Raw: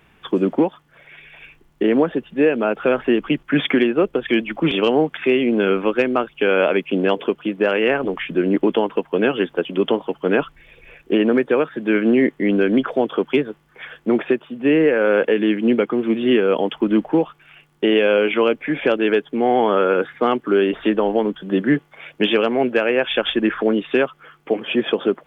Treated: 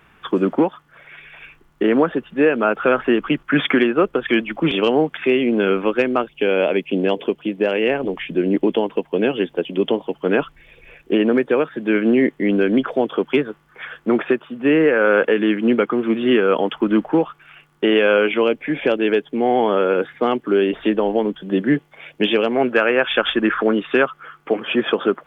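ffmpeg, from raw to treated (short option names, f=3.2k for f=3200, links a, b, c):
-af "asetnsamples=n=441:p=0,asendcmd='4.45 equalizer g 0.5;6.22 equalizer g -7.5;10.17 equalizer g -0.5;13.32 equalizer g 6;18.27 equalizer g -3;22.56 equalizer g 8',equalizer=f=1.3k:t=o:w=0.85:g=7"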